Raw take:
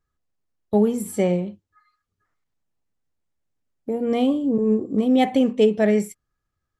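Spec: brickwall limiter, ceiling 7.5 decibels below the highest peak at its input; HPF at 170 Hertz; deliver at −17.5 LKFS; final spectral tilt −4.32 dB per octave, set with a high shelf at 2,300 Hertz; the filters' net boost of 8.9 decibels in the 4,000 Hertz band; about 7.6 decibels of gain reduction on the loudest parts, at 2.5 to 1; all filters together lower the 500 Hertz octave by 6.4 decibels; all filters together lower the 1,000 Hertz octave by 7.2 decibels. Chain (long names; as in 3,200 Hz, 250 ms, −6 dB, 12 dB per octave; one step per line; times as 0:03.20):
high-pass filter 170 Hz
parametric band 500 Hz −6 dB
parametric band 1,000 Hz −9 dB
high-shelf EQ 2,300 Hz +6 dB
parametric band 4,000 Hz +8 dB
downward compressor 2.5 to 1, threshold −28 dBFS
level +14.5 dB
brickwall limiter −8 dBFS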